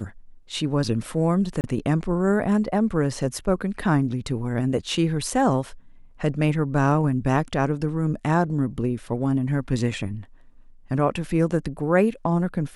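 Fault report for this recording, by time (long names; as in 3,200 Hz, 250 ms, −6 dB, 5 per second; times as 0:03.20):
0:01.61–0:01.64: drop-out 29 ms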